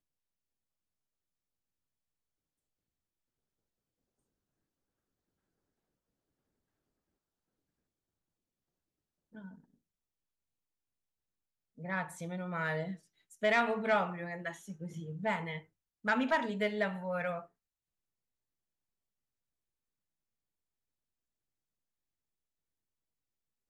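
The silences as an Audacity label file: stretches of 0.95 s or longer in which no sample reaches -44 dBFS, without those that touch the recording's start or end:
9.490000	11.800000	silence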